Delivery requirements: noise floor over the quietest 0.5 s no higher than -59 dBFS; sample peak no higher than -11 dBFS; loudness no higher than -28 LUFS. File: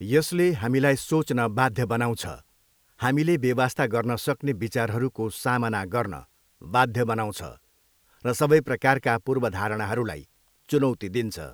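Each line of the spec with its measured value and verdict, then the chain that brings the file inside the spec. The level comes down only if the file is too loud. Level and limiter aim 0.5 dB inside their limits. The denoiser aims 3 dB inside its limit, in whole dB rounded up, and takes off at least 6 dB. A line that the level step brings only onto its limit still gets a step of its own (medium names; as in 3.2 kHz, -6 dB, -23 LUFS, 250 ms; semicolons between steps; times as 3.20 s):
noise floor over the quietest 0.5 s -65 dBFS: pass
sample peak -4.0 dBFS: fail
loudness -25.0 LUFS: fail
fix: trim -3.5 dB; peak limiter -11.5 dBFS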